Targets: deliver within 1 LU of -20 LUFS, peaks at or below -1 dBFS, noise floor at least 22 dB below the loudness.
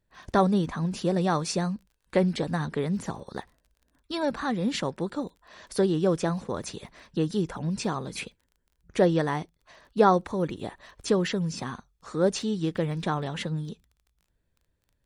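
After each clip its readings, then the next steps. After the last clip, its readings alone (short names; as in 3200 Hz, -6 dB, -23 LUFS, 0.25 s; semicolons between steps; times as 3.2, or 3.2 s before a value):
ticks 25/s; loudness -28.0 LUFS; peak -7.5 dBFS; loudness target -20.0 LUFS
-> de-click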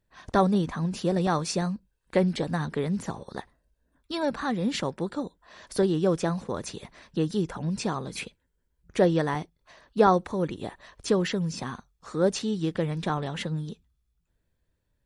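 ticks 0/s; loudness -28.0 LUFS; peak -7.5 dBFS; loudness target -20.0 LUFS
-> gain +8 dB; limiter -1 dBFS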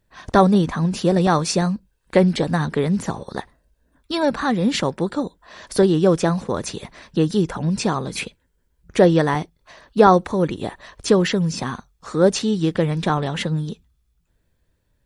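loudness -20.0 LUFS; peak -1.0 dBFS; noise floor -68 dBFS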